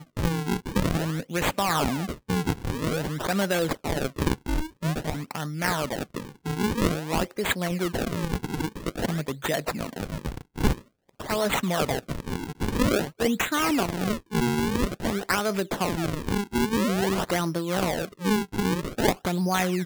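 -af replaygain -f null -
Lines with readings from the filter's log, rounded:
track_gain = +8.0 dB
track_peak = 0.330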